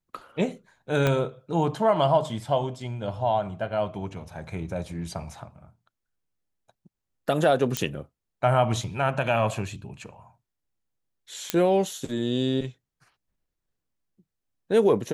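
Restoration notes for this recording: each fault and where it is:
1.07 s: pop -10 dBFS
7.77 s: pop -8 dBFS
11.50 s: pop -7 dBFS

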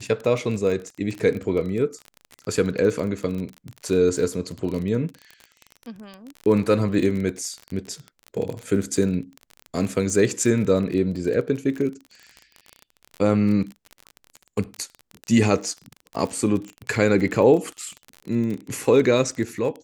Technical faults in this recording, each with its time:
crackle 29 per s -28 dBFS

